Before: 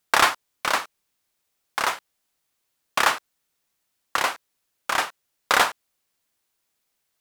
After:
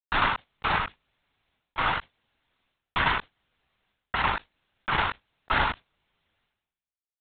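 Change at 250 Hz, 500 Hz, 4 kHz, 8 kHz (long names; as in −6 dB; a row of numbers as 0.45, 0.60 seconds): +2.0 dB, −6.0 dB, −5.5 dB, below −40 dB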